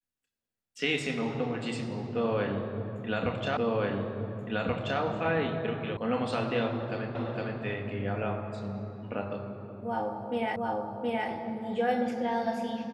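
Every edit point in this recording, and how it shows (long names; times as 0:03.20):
0:03.57: the same again, the last 1.43 s
0:05.97: cut off before it has died away
0:07.15: the same again, the last 0.46 s
0:10.56: the same again, the last 0.72 s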